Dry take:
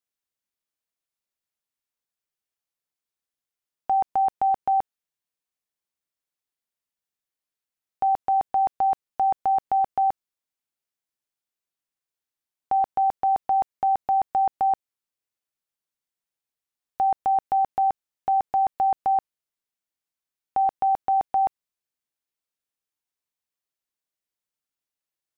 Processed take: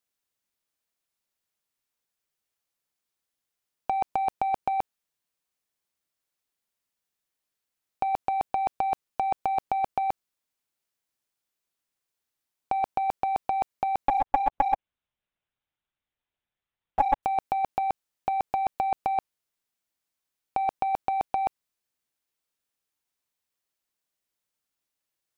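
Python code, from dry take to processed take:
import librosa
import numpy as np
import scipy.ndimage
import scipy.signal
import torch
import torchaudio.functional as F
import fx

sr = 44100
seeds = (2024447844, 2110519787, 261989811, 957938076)

y = fx.lpc_monotone(x, sr, seeds[0], pitch_hz=280.0, order=10, at=(14.08, 17.23))
y = fx.leveller(y, sr, passes=1)
y = fx.over_compress(y, sr, threshold_db=-23.0, ratio=-0.5)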